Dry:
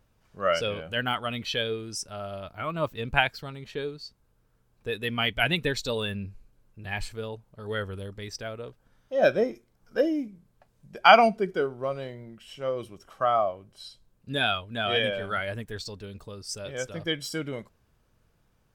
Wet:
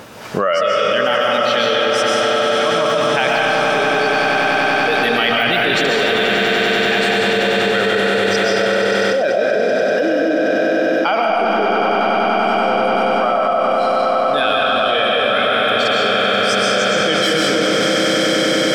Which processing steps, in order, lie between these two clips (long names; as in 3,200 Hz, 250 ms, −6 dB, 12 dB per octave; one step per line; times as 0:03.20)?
high-pass filter 250 Hz 12 dB per octave
de-essing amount 60%
high-shelf EQ 8,500 Hz −7.5 dB
echo that builds up and dies away 96 ms, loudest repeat 8, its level −11 dB
comb and all-pass reverb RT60 1.4 s, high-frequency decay 0.8×, pre-delay 90 ms, DRR −2 dB
envelope flattener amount 100%
level −4 dB